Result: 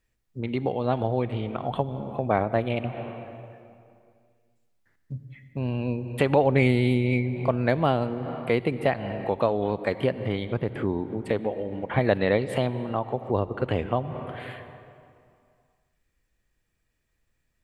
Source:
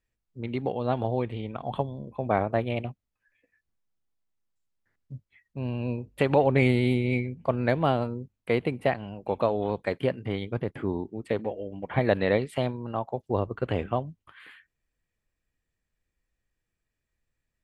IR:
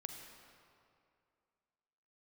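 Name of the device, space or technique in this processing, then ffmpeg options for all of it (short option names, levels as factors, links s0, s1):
ducked reverb: -filter_complex "[0:a]asplit=3[s0][s1][s2];[1:a]atrim=start_sample=2205[s3];[s1][s3]afir=irnorm=-1:irlink=0[s4];[s2]apad=whole_len=777682[s5];[s4][s5]sidechaincompress=threshold=0.0112:ratio=8:attack=41:release=153,volume=1.88[s6];[s0][s6]amix=inputs=2:normalize=0"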